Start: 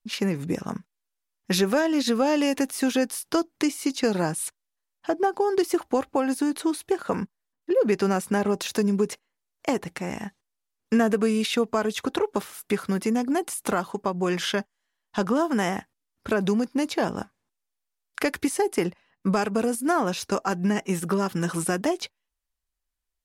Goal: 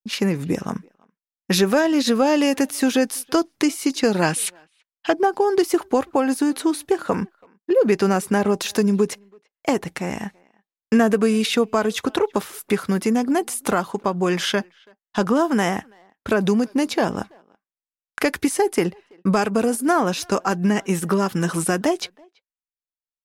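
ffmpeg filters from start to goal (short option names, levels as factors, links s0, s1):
-filter_complex "[0:a]agate=range=0.0224:threshold=0.00447:ratio=3:detection=peak,asettb=1/sr,asplit=3[s0][s1][s2];[s0]atrim=end=4.224[s3];[s1]atrim=start=4.22:end=5.13,asetpts=PTS-STARTPTS,afade=t=in:d=0.004:c=qsin,afade=t=out:st=0.906:d=0.004:c=qsin,equalizer=f=2800:t=o:w=1.6:g=13.5[s4];[s2]atrim=start=5.126[s5];[s3][s4]acrossfade=d=0.004:c1=hsin:c2=qsin[s6];[s6][s5]acrossfade=d=0.004:c1=qsin:c2=hsin,asplit=2[s7][s8];[s8]adelay=330,highpass=300,lowpass=3400,asoftclip=type=hard:threshold=0.0944,volume=0.0447[s9];[s7][s9]amix=inputs=2:normalize=0,volume=1.68"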